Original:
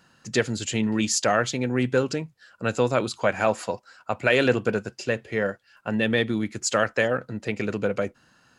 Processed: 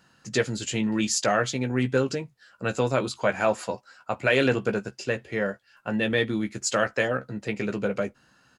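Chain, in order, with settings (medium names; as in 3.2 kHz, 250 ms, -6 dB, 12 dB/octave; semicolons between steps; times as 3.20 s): doubling 15 ms -8 dB; trim -2 dB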